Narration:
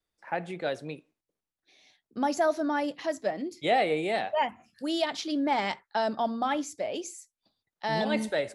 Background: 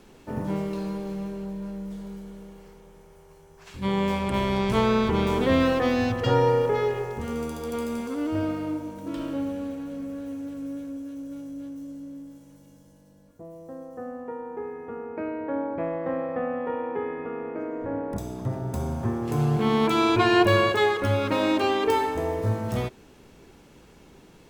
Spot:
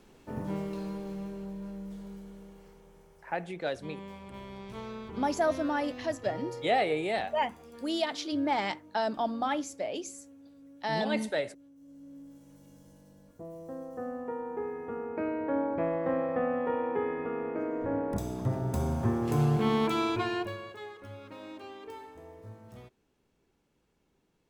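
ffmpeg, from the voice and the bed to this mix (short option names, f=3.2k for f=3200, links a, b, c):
-filter_complex "[0:a]adelay=3000,volume=-2dB[a];[1:a]volume=12.5dB,afade=t=out:st=3.02:d=0.72:silence=0.211349,afade=t=in:st=11.76:d=1.15:silence=0.11885,afade=t=out:st=19.26:d=1.31:silence=0.0891251[b];[a][b]amix=inputs=2:normalize=0"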